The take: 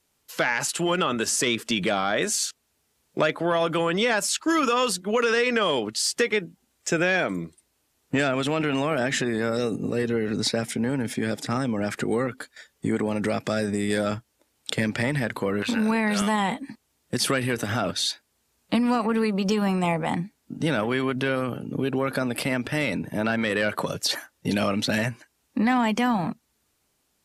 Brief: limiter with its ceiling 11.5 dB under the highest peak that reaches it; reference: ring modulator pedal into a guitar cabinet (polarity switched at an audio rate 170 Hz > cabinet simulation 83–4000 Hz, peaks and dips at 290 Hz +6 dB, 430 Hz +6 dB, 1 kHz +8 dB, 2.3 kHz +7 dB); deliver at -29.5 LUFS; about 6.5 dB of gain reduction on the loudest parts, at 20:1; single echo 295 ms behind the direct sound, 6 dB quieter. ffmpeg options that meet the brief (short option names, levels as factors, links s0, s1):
-af "acompressor=threshold=0.0631:ratio=20,alimiter=limit=0.0944:level=0:latency=1,aecho=1:1:295:0.501,aeval=exprs='val(0)*sgn(sin(2*PI*170*n/s))':c=same,highpass=83,equalizer=f=290:t=q:w=4:g=6,equalizer=f=430:t=q:w=4:g=6,equalizer=f=1000:t=q:w=4:g=8,equalizer=f=2300:t=q:w=4:g=7,lowpass=f=4000:w=0.5412,lowpass=f=4000:w=1.3066,volume=0.794"